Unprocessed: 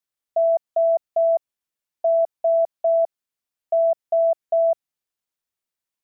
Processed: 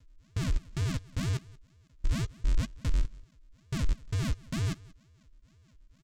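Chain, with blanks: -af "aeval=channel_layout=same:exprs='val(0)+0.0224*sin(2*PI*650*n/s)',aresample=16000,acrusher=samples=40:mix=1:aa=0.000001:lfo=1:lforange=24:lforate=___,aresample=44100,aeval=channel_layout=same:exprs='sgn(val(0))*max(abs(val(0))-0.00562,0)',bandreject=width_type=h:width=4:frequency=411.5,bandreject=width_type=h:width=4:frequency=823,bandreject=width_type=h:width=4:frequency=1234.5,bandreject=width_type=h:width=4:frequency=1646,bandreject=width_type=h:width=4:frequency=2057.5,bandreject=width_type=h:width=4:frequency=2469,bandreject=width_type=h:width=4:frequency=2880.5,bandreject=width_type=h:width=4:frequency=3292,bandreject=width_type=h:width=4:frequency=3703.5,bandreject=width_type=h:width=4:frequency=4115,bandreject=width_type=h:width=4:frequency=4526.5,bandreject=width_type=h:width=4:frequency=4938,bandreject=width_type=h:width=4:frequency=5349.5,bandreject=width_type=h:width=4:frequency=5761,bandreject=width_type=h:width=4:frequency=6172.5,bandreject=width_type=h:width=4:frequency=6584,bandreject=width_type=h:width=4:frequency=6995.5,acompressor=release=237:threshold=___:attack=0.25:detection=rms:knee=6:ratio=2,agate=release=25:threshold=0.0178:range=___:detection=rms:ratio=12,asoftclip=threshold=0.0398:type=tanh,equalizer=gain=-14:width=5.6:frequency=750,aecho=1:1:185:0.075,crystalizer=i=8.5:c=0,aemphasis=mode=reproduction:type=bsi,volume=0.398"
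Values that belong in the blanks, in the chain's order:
2.1, 0.0501, 0.0708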